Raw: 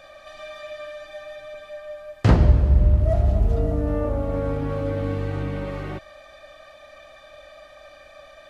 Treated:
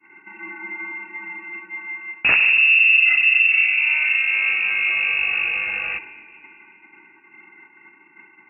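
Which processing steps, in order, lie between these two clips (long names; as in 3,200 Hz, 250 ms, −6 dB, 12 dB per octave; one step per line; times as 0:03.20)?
harmonic generator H 3 −9 dB, 5 −7 dB, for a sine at −4 dBFS
downward expander −32 dBFS
on a send at −15.5 dB: convolution reverb RT60 2.2 s, pre-delay 4 ms
on the sum: voice inversion scrambler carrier 2,700 Hz
level −2.5 dB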